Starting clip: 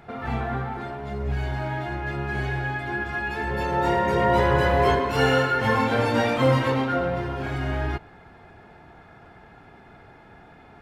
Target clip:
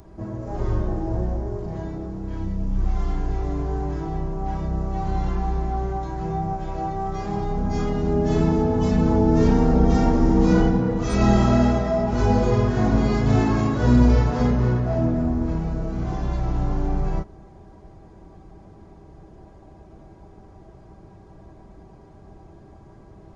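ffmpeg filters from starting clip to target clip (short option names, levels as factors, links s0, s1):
-af "asetrate=20418,aresample=44100,bass=f=250:g=5,treble=f=4000:g=15"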